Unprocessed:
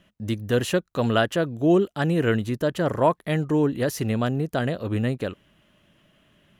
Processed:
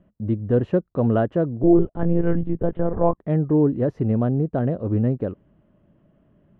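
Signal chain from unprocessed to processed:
Bessel low-pass filter 550 Hz, order 2
0:01.63–0:03.18: one-pitch LPC vocoder at 8 kHz 170 Hz
level +4.5 dB

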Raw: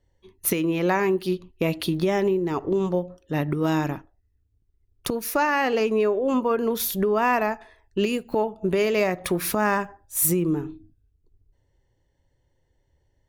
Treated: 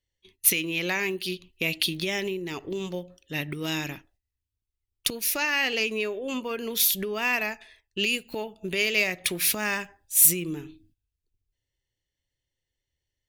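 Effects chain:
noise gate −54 dBFS, range −10 dB
high shelf with overshoot 1,700 Hz +13.5 dB, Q 1.5
level −8.5 dB

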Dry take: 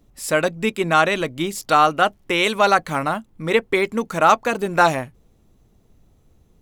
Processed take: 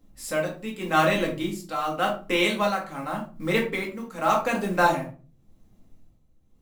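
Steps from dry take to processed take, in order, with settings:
noise that follows the level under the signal 25 dB
amplitude tremolo 0.87 Hz, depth 72%
rectangular room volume 220 cubic metres, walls furnished, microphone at 2.1 metres
level −7 dB

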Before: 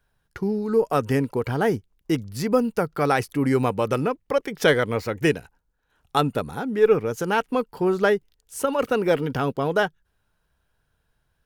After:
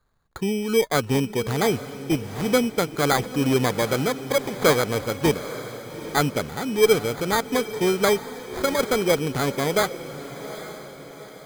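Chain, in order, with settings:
decimation without filtering 16×
feedback delay with all-pass diffusion 833 ms, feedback 48%, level −13 dB

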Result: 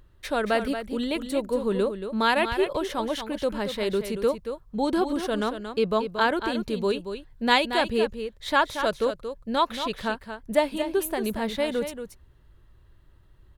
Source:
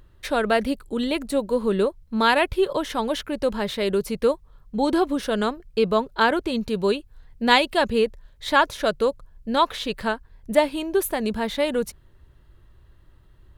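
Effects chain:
single-tap delay 229 ms −9 dB
level −3.5 dB

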